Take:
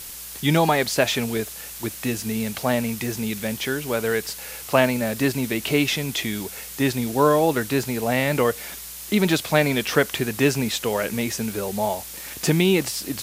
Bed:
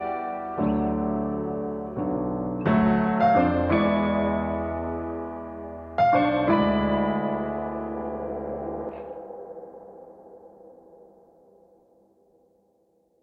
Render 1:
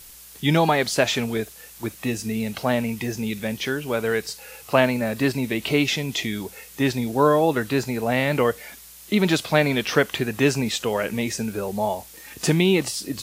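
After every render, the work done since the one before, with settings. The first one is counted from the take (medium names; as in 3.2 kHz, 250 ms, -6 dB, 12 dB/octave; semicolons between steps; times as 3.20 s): noise print and reduce 8 dB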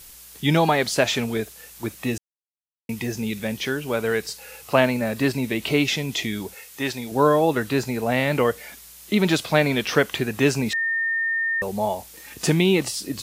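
2.18–2.89 s: mute; 6.54–7.12 s: bass shelf 370 Hz -10.5 dB; 10.73–11.62 s: bleep 1.82 kHz -20.5 dBFS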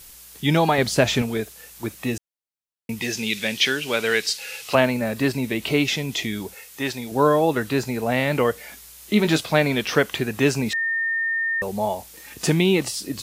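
0.78–1.22 s: bass shelf 220 Hz +11 dB; 3.02–4.75 s: frequency weighting D; 8.66–9.41 s: doubling 19 ms -9 dB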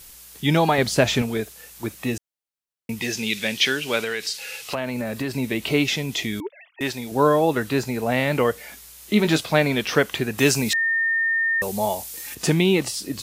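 4.02–5.35 s: compression, threshold -22 dBFS; 6.40–6.81 s: formants replaced by sine waves; 10.38–12.35 s: treble shelf 3.6 kHz +10.5 dB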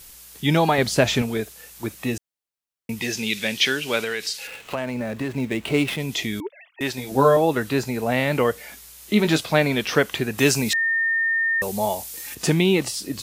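4.47–6.00 s: median filter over 9 samples; 6.96–7.37 s: doubling 15 ms -3 dB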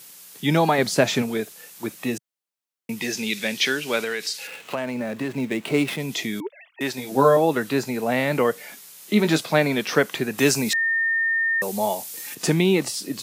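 high-pass 140 Hz 24 dB/octave; dynamic bell 3 kHz, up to -4 dB, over -37 dBFS, Q 2.8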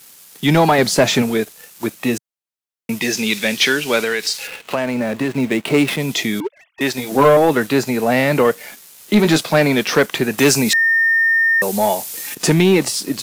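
waveshaping leveller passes 2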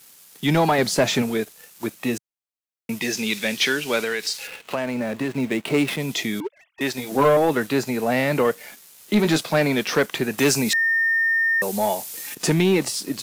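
trim -5.5 dB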